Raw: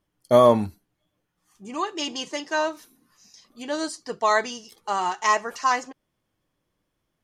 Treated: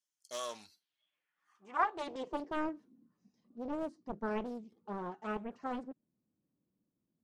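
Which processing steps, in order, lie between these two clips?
band-pass sweep 6700 Hz -> 220 Hz, 0.47–2.79; Doppler distortion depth 0.9 ms; gain +1 dB

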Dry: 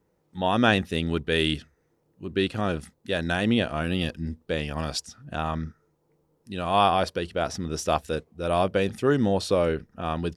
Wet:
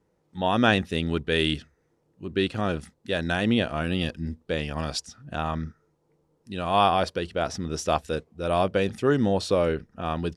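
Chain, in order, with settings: LPF 10000 Hz 12 dB/oct

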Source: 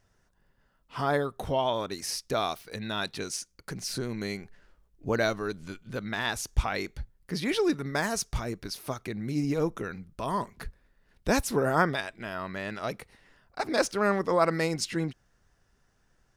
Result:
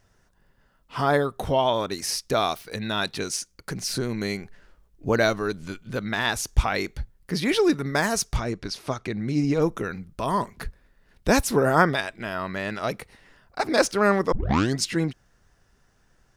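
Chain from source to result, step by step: 8.36–9.62 LPF 6800 Hz 12 dB/oct; 14.32 tape start 0.48 s; gain +5.5 dB

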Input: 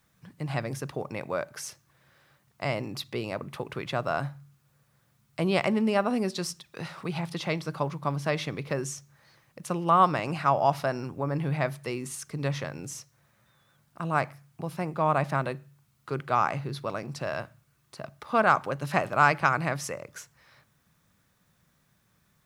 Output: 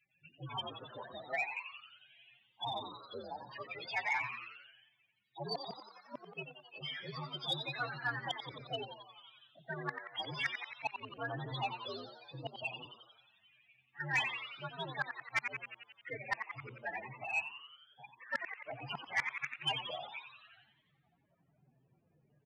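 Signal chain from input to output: inharmonic rescaling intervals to 125%; 3.91–5.57 low shelf 360 Hz -6 dB; loudest bins only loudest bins 16; flipped gate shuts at -21 dBFS, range -33 dB; band-pass sweep 3000 Hz -> 520 Hz, 19.49–21.57; on a send: frequency-shifting echo 89 ms, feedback 63%, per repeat +110 Hz, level -9 dB; 14.12–14.65 on the sum: added noise blue -75 dBFS; in parallel at -3 dB: wrapped overs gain 34.5 dB; on the sum: downsampling 11025 Hz; soft clip -35 dBFS, distortion -18 dB; bell 140 Hz +10.5 dB 0.28 oct; 17.25–18.35 upward expander 1.5:1, over -52 dBFS; gain +10.5 dB

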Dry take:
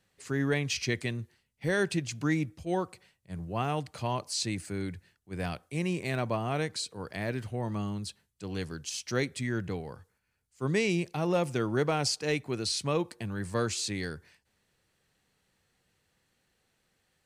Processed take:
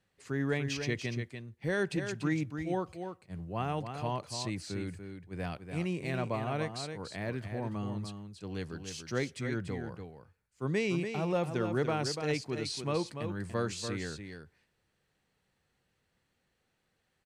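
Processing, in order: high shelf 4500 Hz -7.5 dB; echo 0.29 s -7.5 dB; gain -3 dB

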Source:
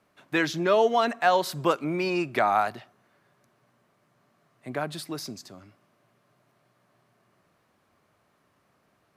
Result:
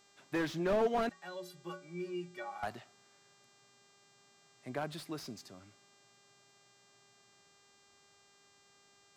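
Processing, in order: 1.09–2.63 metallic resonator 170 Hz, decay 0.41 s, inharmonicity 0.03; buzz 400 Hz, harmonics 20, -60 dBFS -1 dB/oct; slew limiter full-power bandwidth 59 Hz; gain -7 dB

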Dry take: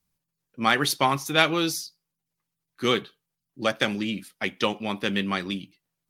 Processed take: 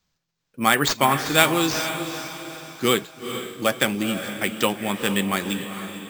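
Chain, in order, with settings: sample-and-hold 4×; diffused feedback echo 0.452 s, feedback 44%, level -9 dB; gain +3 dB

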